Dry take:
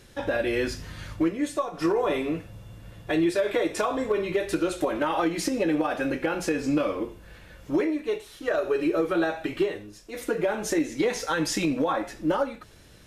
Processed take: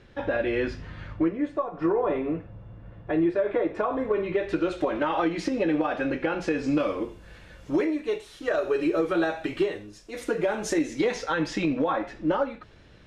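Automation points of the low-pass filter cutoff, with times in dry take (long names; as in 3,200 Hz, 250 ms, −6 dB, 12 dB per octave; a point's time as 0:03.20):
0:00.76 2,800 Hz
0:01.60 1,500 Hz
0:03.80 1,500 Hz
0:04.79 3,800 Hz
0:06.43 3,800 Hz
0:06.98 8,600 Hz
0:10.94 8,600 Hz
0:11.34 3,400 Hz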